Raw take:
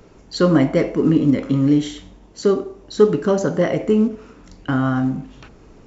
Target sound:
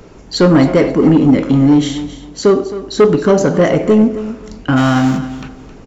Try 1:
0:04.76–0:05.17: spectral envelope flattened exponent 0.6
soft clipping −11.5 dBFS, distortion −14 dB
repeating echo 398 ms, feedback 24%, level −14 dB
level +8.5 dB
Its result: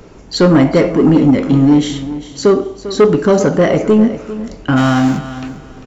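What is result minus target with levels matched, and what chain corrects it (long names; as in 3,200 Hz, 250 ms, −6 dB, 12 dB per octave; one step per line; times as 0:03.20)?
echo 132 ms late
0:04.76–0:05.17: spectral envelope flattened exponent 0.6
soft clipping −11.5 dBFS, distortion −14 dB
repeating echo 266 ms, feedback 24%, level −14 dB
level +8.5 dB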